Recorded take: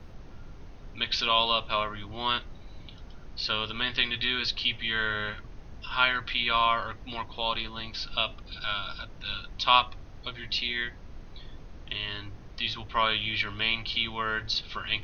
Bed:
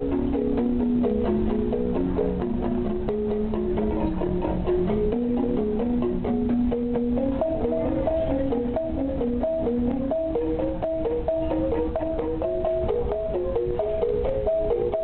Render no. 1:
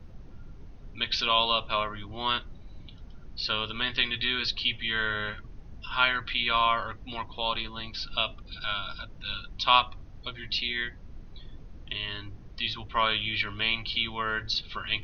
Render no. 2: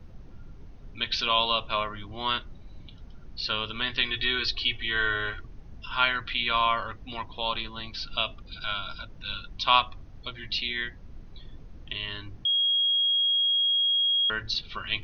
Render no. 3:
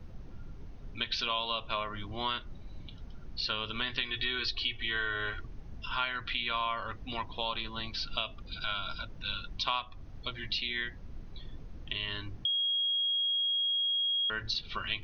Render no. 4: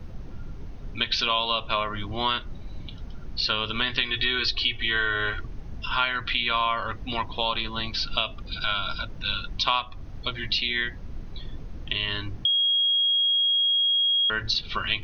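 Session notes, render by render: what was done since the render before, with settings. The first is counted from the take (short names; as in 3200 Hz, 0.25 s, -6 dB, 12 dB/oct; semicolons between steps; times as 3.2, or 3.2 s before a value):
denoiser 7 dB, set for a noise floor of -46 dBFS
4.08–5.45 comb 2.7 ms; 12.45–14.3 bleep 3280 Hz -21 dBFS
compressor 4:1, threshold -30 dBFS, peak gain reduction 13 dB
gain +8 dB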